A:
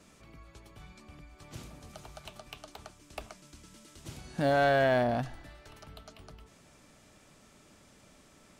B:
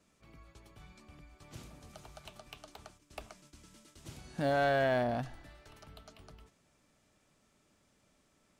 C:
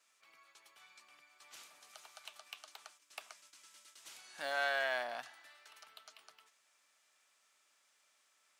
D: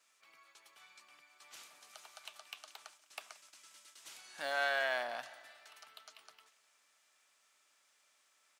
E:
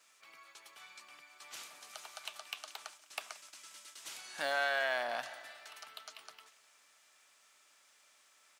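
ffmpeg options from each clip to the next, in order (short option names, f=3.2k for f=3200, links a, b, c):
-af "agate=range=-8dB:threshold=-55dB:ratio=16:detection=peak,volume=-4dB"
-af "highpass=1.2k,volume=2dB"
-af "aecho=1:1:178|356|534|712:0.1|0.055|0.0303|0.0166,volume=1dB"
-af "acompressor=threshold=-39dB:ratio=2,volume=6dB"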